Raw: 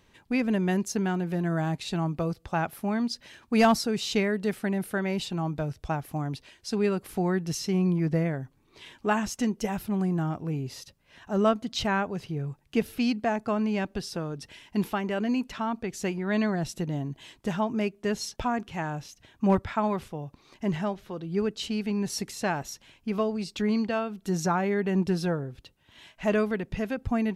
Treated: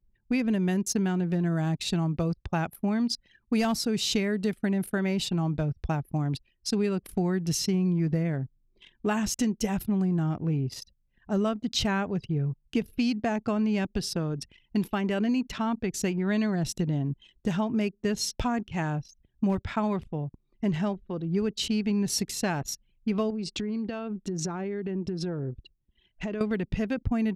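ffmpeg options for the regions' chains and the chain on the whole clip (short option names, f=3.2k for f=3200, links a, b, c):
-filter_complex "[0:a]asettb=1/sr,asplit=3[a][b][c];[a]atrim=end=23.304[d];[b]atrim=start=23.3:end=26.41,asetpts=PTS-STARTPTS,afade=t=in:d=0.004:c=qsin,afade=t=out:st=3.106:d=0.004:c=qsin,lowpass=f=8.9k:w=0.5412,lowpass=f=8.9k:w=1.3066,equalizer=f=360:w=3.2:g=6,acompressor=threshold=-32dB:ratio=8:attack=3.2:release=140:knee=1:detection=peak[e];[c]atrim=start=26.406[f];[d][e]acrossfade=d=0.004:c1=hsin:c2=qsin[g];[g][f]acrossfade=d=0.004:c1=qsin:c2=hsin,anlmdn=0.158,equalizer=f=950:t=o:w=2.8:g=-7,acompressor=threshold=-29dB:ratio=6,volume=6.5dB"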